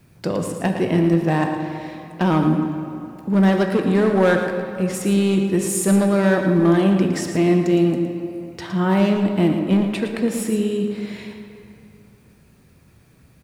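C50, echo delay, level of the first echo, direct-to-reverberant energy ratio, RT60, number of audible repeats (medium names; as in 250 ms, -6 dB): 4.5 dB, 113 ms, -9.0 dB, 3.5 dB, 2.8 s, 1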